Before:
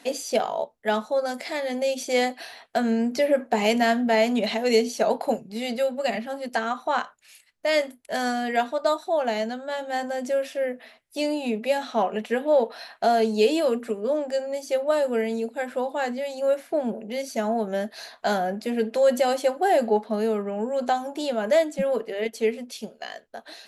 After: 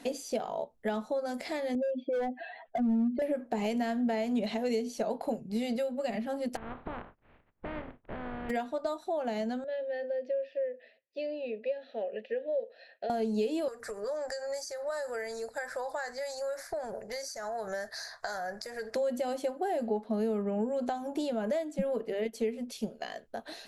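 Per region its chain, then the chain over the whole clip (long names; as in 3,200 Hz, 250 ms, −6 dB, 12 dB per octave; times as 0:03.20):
0:01.75–0:03.22: expanding power law on the bin magnitudes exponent 2.2 + Butterworth low-pass 3,700 Hz 72 dB per octave + gain into a clipping stage and back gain 21.5 dB
0:06.55–0:08.49: compressing power law on the bin magnitudes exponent 0.26 + Gaussian smoothing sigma 4.4 samples + downward compressor 3 to 1, threshold −40 dBFS
0:09.64–0:13.10: formant filter e + high shelf with overshoot 6,500 Hz −13 dB, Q 3
0:13.68–0:18.95: downward compressor 5 to 1, threshold −27 dBFS + drawn EQ curve 120 Hz 0 dB, 240 Hz −24 dB, 420 Hz −7 dB, 620 Hz −1 dB, 920 Hz +1 dB, 1,800 Hz +10 dB, 2,900 Hz −13 dB, 4,800 Hz +13 dB, 9,000 Hz +7 dB, 14,000 Hz +1 dB
whole clip: high-shelf EQ 4,800 Hz +11 dB; downward compressor 4 to 1, threshold −32 dBFS; spectral tilt −3 dB per octave; level −1.5 dB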